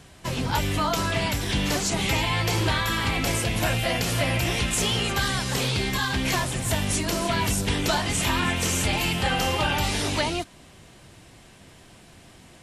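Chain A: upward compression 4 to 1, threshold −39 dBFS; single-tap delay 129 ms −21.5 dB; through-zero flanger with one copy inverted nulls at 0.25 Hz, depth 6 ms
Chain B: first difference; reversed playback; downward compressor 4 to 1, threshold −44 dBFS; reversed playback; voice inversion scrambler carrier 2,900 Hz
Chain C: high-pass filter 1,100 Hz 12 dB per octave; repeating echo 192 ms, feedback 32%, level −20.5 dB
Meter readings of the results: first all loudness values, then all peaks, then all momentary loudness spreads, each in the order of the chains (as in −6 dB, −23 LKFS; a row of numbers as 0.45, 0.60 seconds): −27.5, −52.5, −26.5 LKFS; −13.0, −37.5, −13.5 dBFS; 3, 18, 4 LU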